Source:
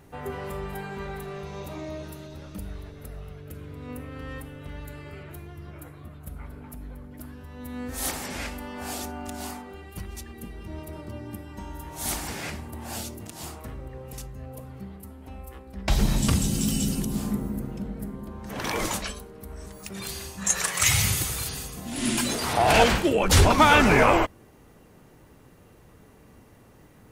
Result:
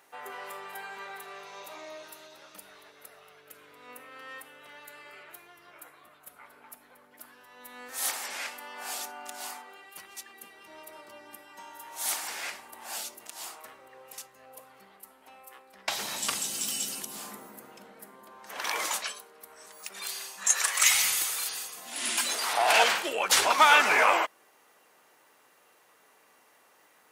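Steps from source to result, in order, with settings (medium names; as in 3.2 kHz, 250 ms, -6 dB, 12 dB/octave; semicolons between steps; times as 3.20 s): high-pass 820 Hz 12 dB/octave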